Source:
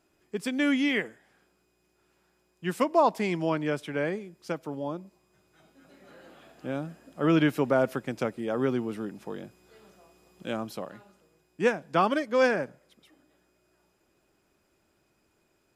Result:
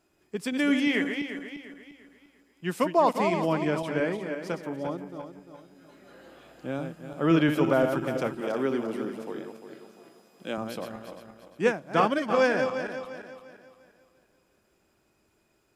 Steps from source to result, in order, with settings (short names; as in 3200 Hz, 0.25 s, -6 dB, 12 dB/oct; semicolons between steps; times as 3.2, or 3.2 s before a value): regenerating reverse delay 0.174 s, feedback 60%, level -6.5 dB; 8.4–10.58 HPF 200 Hz 12 dB/oct